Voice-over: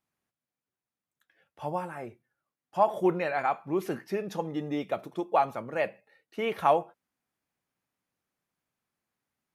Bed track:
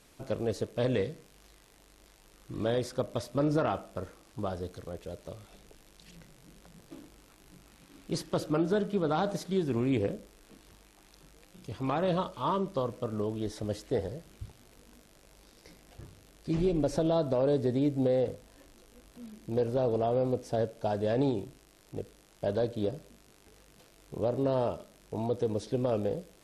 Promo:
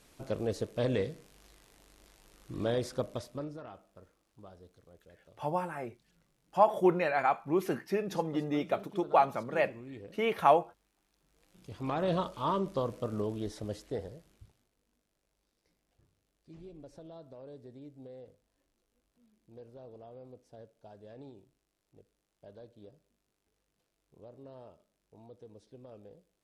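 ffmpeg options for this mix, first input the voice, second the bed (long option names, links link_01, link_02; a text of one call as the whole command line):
ffmpeg -i stem1.wav -i stem2.wav -filter_complex "[0:a]adelay=3800,volume=0dB[link_01];[1:a]volume=15.5dB,afade=type=out:start_time=2.97:duration=0.57:silence=0.149624,afade=type=in:start_time=11.25:duration=0.89:silence=0.141254,afade=type=out:start_time=13.15:duration=1.56:silence=0.0891251[link_02];[link_01][link_02]amix=inputs=2:normalize=0" out.wav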